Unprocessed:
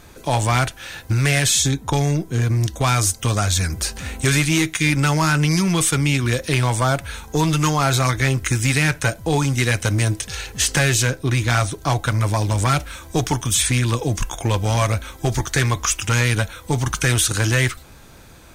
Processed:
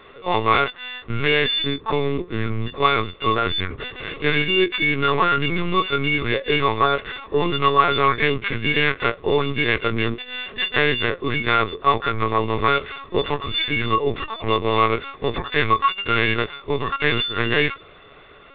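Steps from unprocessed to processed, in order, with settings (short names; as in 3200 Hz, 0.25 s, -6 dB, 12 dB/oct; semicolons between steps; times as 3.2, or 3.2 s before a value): frequency quantiser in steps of 4 st; LPC vocoder at 8 kHz pitch kept; small resonant body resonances 420/1100 Hz, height 12 dB, ringing for 30 ms; gain -5.5 dB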